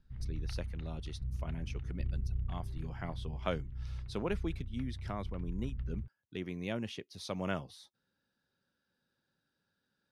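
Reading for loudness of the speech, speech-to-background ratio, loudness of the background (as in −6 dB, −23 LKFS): −42.0 LKFS, 0.5 dB, −42.5 LKFS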